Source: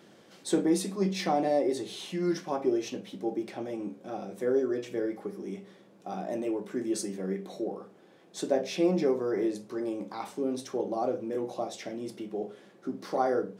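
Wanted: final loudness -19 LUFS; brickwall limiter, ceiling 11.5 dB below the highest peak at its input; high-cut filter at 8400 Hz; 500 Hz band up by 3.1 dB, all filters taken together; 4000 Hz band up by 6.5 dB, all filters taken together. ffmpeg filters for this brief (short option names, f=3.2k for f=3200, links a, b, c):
-af "lowpass=8.4k,equalizer=f=500:t=o:g=4,equalizer=f=4k:t=o:g=8,volume=13dB,alimiter=limit=-8.5dB:level=0:latency=1"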